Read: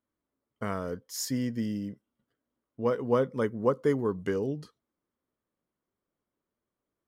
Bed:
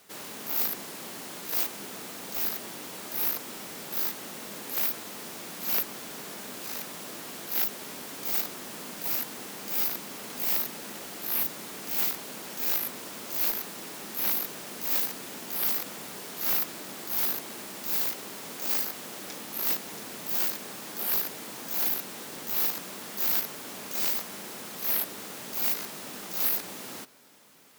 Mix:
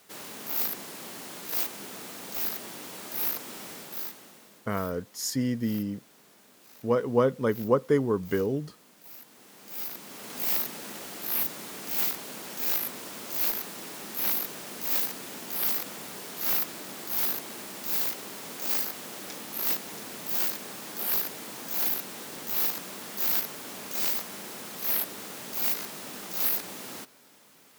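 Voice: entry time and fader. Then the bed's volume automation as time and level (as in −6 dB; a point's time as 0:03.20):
4.05 s, +2.5 dB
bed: 0:03.71 −1 dB
0:04.68 −17.5 dB
0:09.14 −17.5 dB
0:10.38 0 dB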